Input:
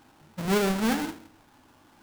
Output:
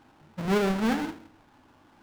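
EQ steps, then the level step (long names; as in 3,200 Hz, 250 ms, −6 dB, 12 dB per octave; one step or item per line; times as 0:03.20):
high-shelf EQ 5,600 Hz −12 dB
0.0 dB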